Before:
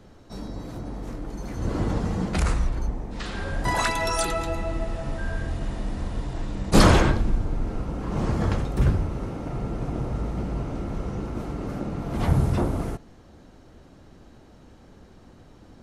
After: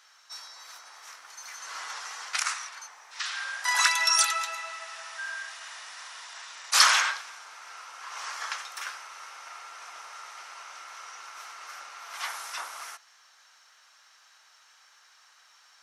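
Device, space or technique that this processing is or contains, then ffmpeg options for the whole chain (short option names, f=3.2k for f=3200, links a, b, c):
headphones lying on a table: -af "highpass=f=1.2k:w=0.5412,highpass=f=1.2k:w=1.3066,equalizer=f=5.7k:t=o:w=0.35:g=8,volume=4dB"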